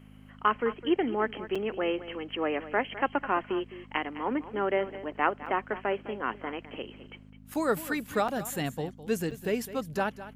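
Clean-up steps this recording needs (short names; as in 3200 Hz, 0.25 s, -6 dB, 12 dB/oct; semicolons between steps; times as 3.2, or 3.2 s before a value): de-hum 51.6 Hz, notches 5; interpolate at 1.55/5.46/7.54/8.28/9.31, 5.3 ms; expander -43 dBFS, range -21 dB; inverse comb 0.208 s -14.5 dB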